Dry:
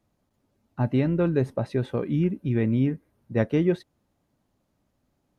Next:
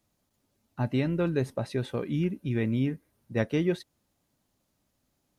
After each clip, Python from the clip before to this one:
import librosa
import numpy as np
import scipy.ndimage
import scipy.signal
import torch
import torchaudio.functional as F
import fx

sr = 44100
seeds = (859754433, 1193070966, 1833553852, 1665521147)

y = fx.high_shelf(x, sr, hz=2500.0, db=11.5)
y = y * 10.0 ** (-4.5 / 20.0)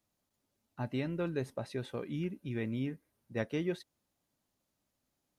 y = fx.low_shelf(x, sr, hz=240.0, db=-4.5)
y = y * 10.0 ** (-6.0 / 20.0)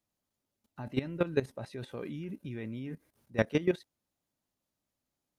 y = fx.level_steps(x, sr, step_db=16)
y = y * 10.0 ** (9.0 / 20.0)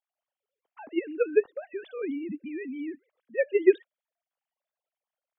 y = fx.sine_speech(x, sr)
y = y * 10.0 ** (6.0 / 20.0)